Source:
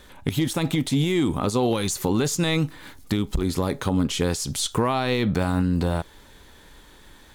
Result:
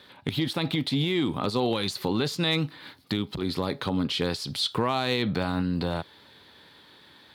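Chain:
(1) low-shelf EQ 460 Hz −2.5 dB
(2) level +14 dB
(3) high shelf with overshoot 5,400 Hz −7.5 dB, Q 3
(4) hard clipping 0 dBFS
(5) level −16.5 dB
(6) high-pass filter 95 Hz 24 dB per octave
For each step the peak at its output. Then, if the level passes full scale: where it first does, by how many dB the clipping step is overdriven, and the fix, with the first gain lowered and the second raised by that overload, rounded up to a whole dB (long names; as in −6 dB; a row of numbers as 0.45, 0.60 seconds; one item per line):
−12.5, +1.5, +4.0, 0.0, −16.5, −12.0 dBFS
step 2, 4.0 dB
step 2 +10 dB, step 5 −12.5 dB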